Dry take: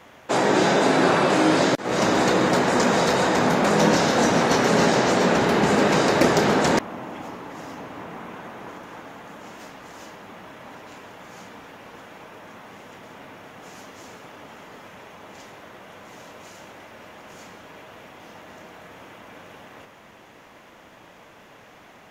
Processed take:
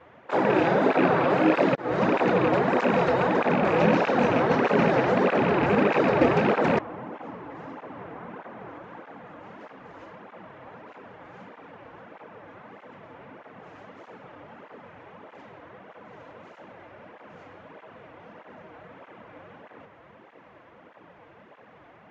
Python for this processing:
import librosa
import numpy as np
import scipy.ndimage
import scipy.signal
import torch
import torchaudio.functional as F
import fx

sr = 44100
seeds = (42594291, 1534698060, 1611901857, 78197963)

y = fx.rattle_buzz(x, sr, strikes_db=-23.0, level_db=-11.0)
y = scipy.signal.sosfilt(scipy.signal.butter(2, 2000.0, 'lowpass', fs=sr, output='sos'), y)
y = fx.peak_eq(y, sr, hz=500.0, db=3.0, octaves=0.32)
y = fx.flanger_cancel(y, sr, hz=1.6, depth_ms=5.4)